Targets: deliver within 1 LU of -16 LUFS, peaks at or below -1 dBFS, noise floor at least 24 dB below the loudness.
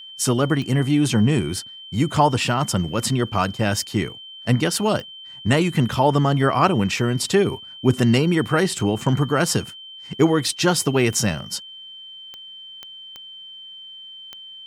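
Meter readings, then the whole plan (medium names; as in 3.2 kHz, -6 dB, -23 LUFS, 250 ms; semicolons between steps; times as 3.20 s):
clicks found 7; steady tone 3.1 kHz; tone level -37 dBFS; loudness -20.5 LUFS; peak level -3.5 dBFS; loudness target -16.0 LUFS
-> de-click; band-stop 3.1 kHz, Q 30; trim +4.5 dB; peak limiter -1 dBFS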